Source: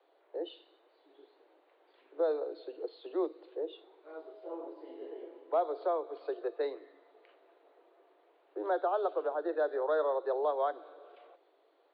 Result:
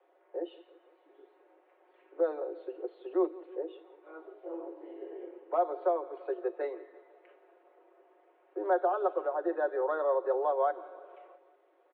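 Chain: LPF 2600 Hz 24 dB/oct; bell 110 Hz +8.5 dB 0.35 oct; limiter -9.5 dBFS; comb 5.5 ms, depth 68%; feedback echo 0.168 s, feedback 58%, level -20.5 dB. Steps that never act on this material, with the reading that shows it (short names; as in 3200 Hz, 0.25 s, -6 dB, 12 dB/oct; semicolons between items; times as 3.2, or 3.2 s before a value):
bell 110 Hz: input band starts at 250 Hz; limiter -9.5 dBFS: input peak -19.5 dBFS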